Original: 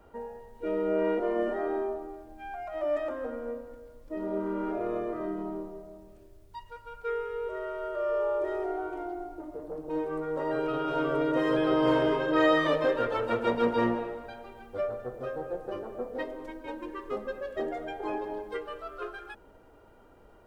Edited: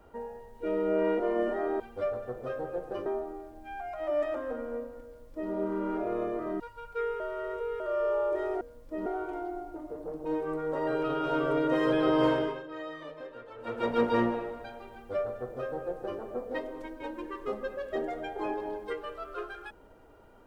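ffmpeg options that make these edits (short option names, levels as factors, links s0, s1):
-filter_complex "[0:a]asplit=10[s0][s1][s2][s3][s4][s5][s6][s7][s8][s9];[s0]atrim=end=1.802[s10];[s1]atrim=start=14.568:end=15.832[s11];[s2]atrim=start=1.798:end=5.342[s12];[s3]atrim=start=6.688:end=7.292[s13];[s4]atrim=start=7.288:end=7.892,asetpts=PTS-STARTPTS,areverse[s14];[s5]atrim=start=7.888:end=8.702[s15];[s6]atrim=start=3.798:end=4.252[s16];[s7]atrim=start=8.698:end=12.31,asetpts=PTS-STARTPTS,afade=t=out:st=3.172:d=0.44:silence=0.133352[s17];[s8]atrim=start=12.31:end=13.2,asetpts=PTS-STARTPTS,volume=0.133[s18];[s9]atrim=start=13.2,asetpts=PTS-STARTPTS,afade=t=in:d=0.44:silence=0.133352[s19];[s10][s11]acrossfade=d=0.004:c1=hsin:c2=hsin[s20];[s20][s12]acrossfade=d=0.004:c1=hsin:c2=hsin[s21];[s21][s13]acrossfade=d=0.004:c1=hsin:c2=hsin[s22];[s22][s14]acrossfade=d=0.004:c1=hsin:c2=hsin[s23];[s23][s15]acrossfade=d=0.004:c1=hsin:c2=hsin[s24];[s24][s16]acrossfade=d=0.004:c1=hsin:c2=hsin[s25];[s17][s18][s19]concat=n=3:v=0:a=1[s26];[s25][s26]acrossfade=d=0.004:c1=hsin:c2=hsin"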